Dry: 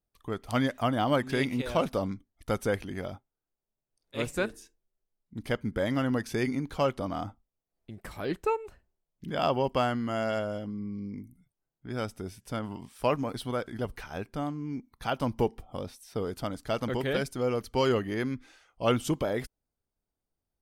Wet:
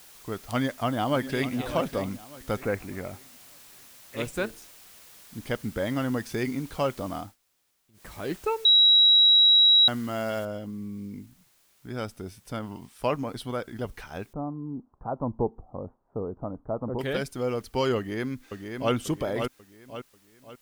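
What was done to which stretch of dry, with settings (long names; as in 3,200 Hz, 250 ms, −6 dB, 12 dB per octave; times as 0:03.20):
0:00.54–0:01.56: delay throw 600 ms, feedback 35%, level −12.5 dB
0:02.60–0:04.17: bad sample-rate conversion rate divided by 8×, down none, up filtered
0:07.16–0:08.13: duck −21.5 dB, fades 0.20 s
0:08.65–0:09.88: beep over 3,870 Hz −14 dBFS
0:10.45: noise floor change −51 dB −64 dB
0:14.33–0:16.99: Butterworth low-pass 1,100 Hz
0:17.97–0:18.93: delay throw 540 ms, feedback 40%, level −5.5 dB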